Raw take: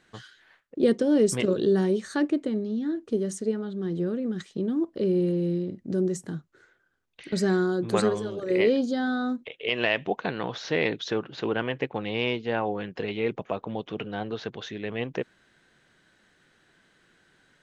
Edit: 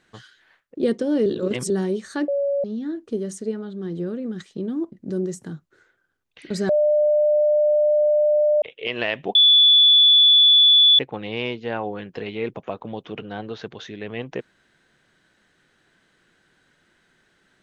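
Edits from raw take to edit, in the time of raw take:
0:01.26–0:01.70: reverse
0:02.28–0:02.64: beep over 563 Hz −19 dBFS
0:04.92–0:05.74: remove
0:07.51–0:09.44: beep over 599 Hz −14.5 dBFS
0:10.17–0:11.81: beep over 3,450 Hz −10 dBFS

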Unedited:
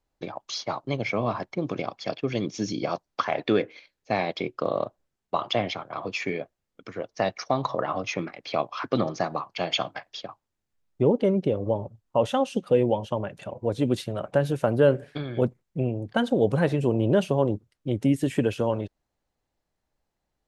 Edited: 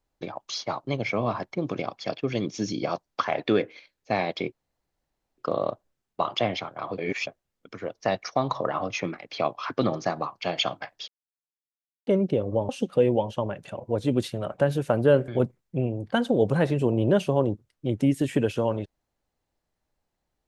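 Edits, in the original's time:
0:04.52: splice in room tone 0.86 s
0:06.12–0:06.41: reverse
0:10.22–0:11.21: silence
0:11.83–0:12.43: remove
0:15.02–0:15.30: remove

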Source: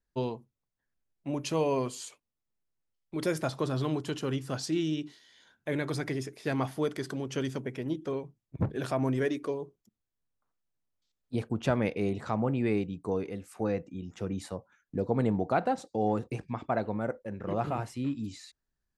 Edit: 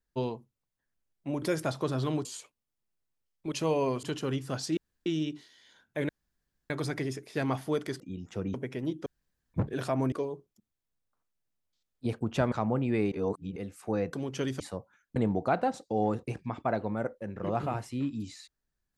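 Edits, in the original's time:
0:01.42–0:01.93: swap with 0:03.20–0:04.03
0:04.77: splice in room tone 0.29 s
0:05.80: splice in room tone 0.61 s
0:07.10–0:07.57: swap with 0:13.85–0:14.39
0:08.09–0:08.57: fill with room tone
0:09.15–0:09.41: remove
0:11.81–0:12.24: remove
0:12.84–0:13.28: reverse
0:14.95–0:15.20: remove

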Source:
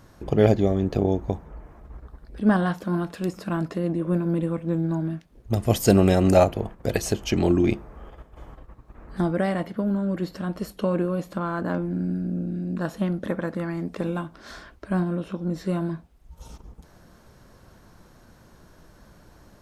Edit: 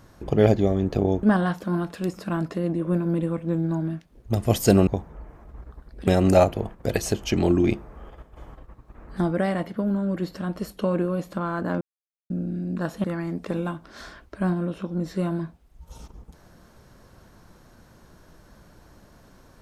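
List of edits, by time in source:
0:01.23–0:02.43: move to 0:06.07
0:11.81–0:12.30: silence
0:13.04–0:13.54: remove

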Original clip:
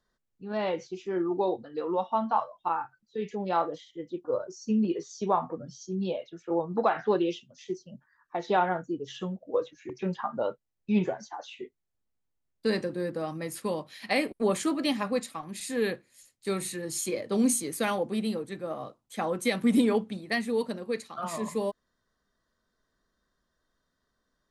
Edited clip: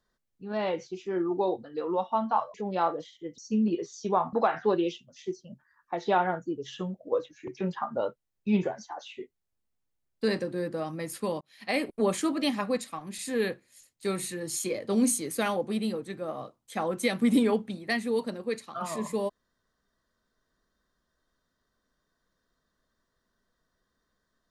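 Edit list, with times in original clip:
0:02.54–0:03.28: remove
0:04.12–0:04.55: remove
0:05.50–0:06.75: remove
0:13.83–0:14.25: fade in

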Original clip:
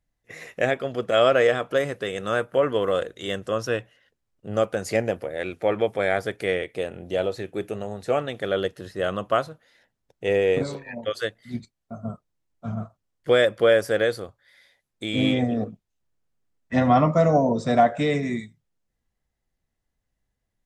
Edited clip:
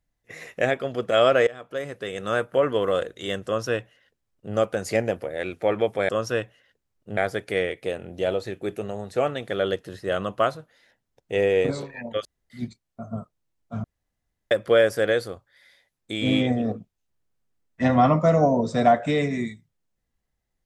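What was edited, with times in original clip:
0:01.47–0:02.35: fade in, from −21 dB
0:03.46–0:04.54: duplicate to 0:06.09
0:11.17–0:11.42: fill with room tone
0:12.76–0:13.43: fill with room tone

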